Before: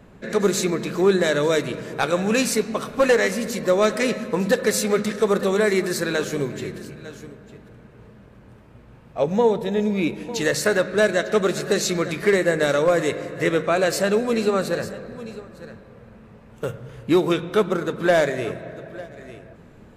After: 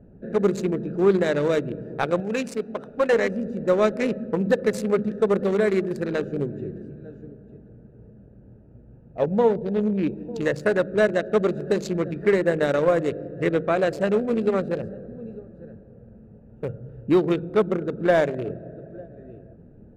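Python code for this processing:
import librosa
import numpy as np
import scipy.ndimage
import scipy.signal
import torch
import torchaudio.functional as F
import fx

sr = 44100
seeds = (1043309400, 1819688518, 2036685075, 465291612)

y = fx.low_shelf(x, sr, hz=270.0, db=-11.0, at=(2.2, 3.13))
y = fx.wiener(y, sr, points=41)
y = fx.high_shelf(y, sr, hz=3500.0, db=-11.5)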